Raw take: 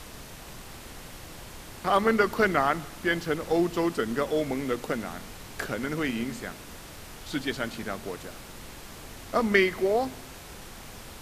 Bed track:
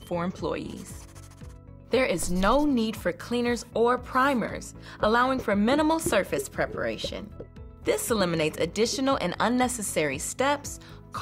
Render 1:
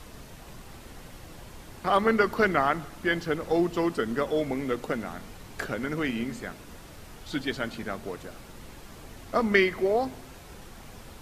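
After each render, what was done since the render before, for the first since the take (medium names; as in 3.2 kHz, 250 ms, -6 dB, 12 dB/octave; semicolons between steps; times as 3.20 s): noise reduction 6 dB, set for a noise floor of -45 dBFS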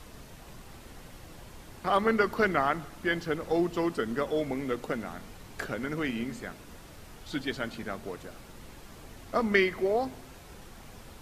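trim -2.5 dB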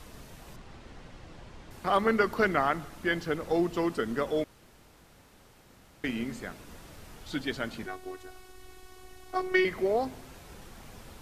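0.56–1.71 s: distance through air 92 m; 4.44–6.04 s: room tone; 7.86–9.65 s: robot voice 372 Hz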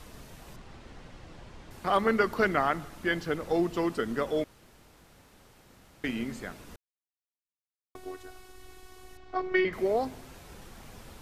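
6.76–7.95 s: mute; 9.17–9.73 s: distance through air 180 m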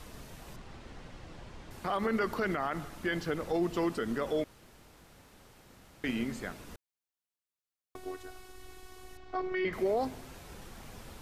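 peak limiter -22 dBFS, peak gain reduction 11 dB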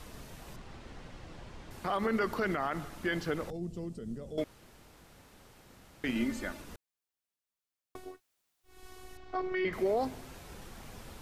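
3.50–4.38 s: FFT filter 190 Hz 0 dB, 290 Hz -11 dB, 550 Hz -11 dB, 1 kHz -24 dB, 1.7 kHz -25 dB, 8.2 kHz -8 dB, 14 kHz -18 dB; 6.15–6.62 s: comb 3.4 ms, depth 69%; 8.09–8.75 s: room tone, crossfade 0.24 s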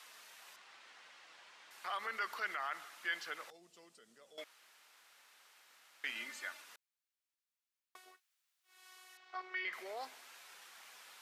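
high-pass 1.4 kHz 12 dB/octave; treble shelf 5.4 kHz -5 dB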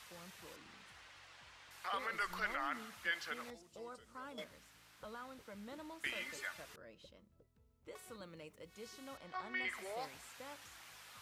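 add bed track -28 dB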